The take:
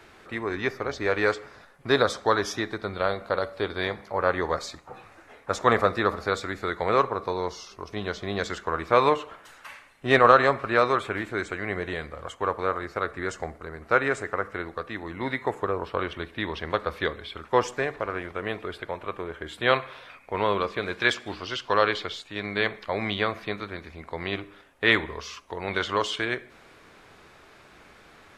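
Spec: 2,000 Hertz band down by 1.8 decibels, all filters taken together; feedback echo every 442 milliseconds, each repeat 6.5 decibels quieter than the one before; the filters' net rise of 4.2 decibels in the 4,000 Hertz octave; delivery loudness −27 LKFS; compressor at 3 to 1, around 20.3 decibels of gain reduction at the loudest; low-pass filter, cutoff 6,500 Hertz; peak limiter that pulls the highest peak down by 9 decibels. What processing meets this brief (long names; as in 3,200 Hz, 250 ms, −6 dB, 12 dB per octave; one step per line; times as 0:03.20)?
low-pass filter 6,500 Hz
parametric band 2,000 Hz −3.5 dB
parametric band 4,000 Hz +6.5 dB
downward compressor 3 to 1, threshold −40 dBFS
brickwall limiter −29.5 dBFS
repeating echo 442 ms, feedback 47%, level −6.5 dB
level +15.5 dB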